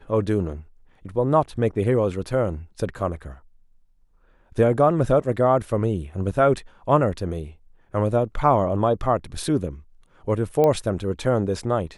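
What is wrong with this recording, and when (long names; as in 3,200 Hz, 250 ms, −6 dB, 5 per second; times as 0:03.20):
0:10.64: click −10 dBFS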